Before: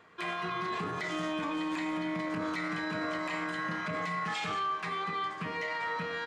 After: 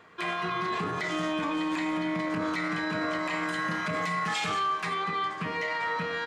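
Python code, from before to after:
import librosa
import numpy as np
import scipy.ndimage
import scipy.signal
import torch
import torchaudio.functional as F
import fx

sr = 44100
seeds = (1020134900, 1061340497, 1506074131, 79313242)

y = fx.high_shelf(x, sr, hz=7500.0, db=10.5, at=(3.43, 4.94))
y = F.gain(torch.from_numpy(y), 4.0).numpy()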